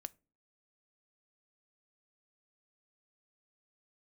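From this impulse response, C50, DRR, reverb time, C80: 26.5 dB, 13.5 dB, no single decay rate, 32.5 dB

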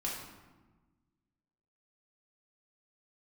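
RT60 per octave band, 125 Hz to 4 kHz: 1.9 s, 1.8 s, 1.3 s, 1.2 s, 1.0 s, 0.75 s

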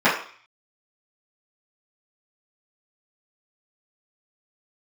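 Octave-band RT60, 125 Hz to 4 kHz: 0.35 s, 0.40 s, 0.40 s, 0.50 s, 0.55 s, 0.55 s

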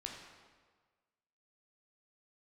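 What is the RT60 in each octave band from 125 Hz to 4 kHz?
1.5 s, 1.4 s, 1.5 s, 1.5 s, 1.3 s, 1.1 s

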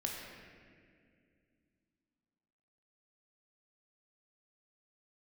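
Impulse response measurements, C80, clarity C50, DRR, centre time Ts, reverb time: 2.0 dB, 0.5 dB, -1.5 dB, 101 ms, 2.2 s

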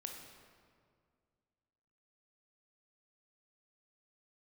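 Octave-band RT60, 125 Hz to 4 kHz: 2.5 s, 2.4 s, 2.2 s, 1.9 s, 1.6 s, 1.3 s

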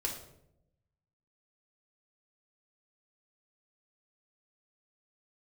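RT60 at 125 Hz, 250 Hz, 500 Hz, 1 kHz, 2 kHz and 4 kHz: 1.4 s, 1.1 s, 0.95 s, 0.65 s, 0.55 s, 0.50 s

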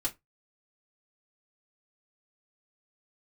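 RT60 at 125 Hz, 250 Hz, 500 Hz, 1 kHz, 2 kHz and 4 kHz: 0.20 s, 0.25 s, 0.20 s, 0.20 s, 0.15 s, 0.15 s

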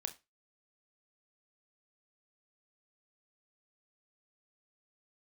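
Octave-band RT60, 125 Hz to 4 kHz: 0.30 s, 0.25 s, 0.25 s, 0.25 s, 0.25 s, 0.25 s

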